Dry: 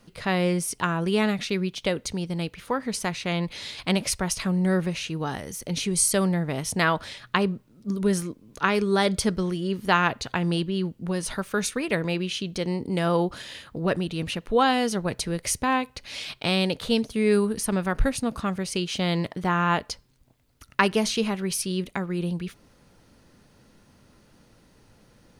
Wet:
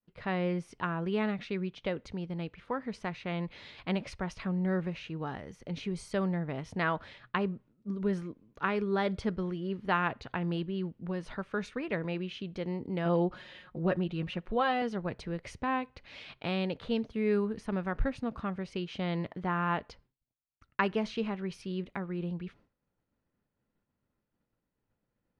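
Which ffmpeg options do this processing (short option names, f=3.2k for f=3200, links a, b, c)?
-filter_complex "[0:a]asettb=1/sr,asplit=3[a][b][c];[a]atrim=end=13.054[d];[b]atrim=start=13.05:end=14.82,asetpts=PTS-STARTPTS,afade=t=in:d=0.004:c=qsin,afade=t=out:st=1.766:d=0.004:c=qsin,aecho=1:1:5.5:0.62,atrim=end_sample=78057[e];[c]atrim=start=14.816[f];[d][e]acrossfade=d=0.004:c1=hsin:c2=qsin[g];[g][f]acrossfade=d=0.004:c1=qsin:c2=hsin,agate=range=-33dB:threshold=-44dB:ratio=3:detection=peak,lowpass=2.5k,volume=-7.5dB"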